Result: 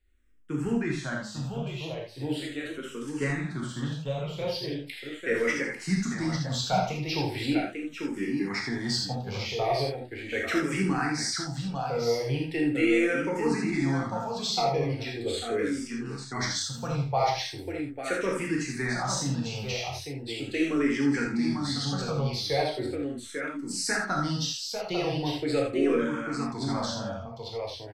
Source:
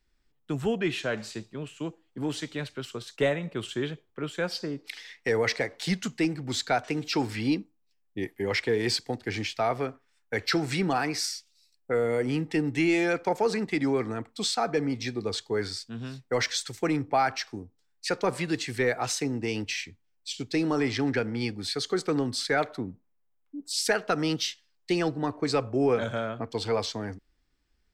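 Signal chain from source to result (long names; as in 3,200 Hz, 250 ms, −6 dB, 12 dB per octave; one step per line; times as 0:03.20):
low-shelf EQ 91 Hz +8.5 dB
multi-tap delay 80/847 ms −10/−5.5 dB
reverb whose tail is shaped and stops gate 110 ms flat, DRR −2 dB
frequency shifter mixed with the dry sound −0.39 Hz
level −3 dB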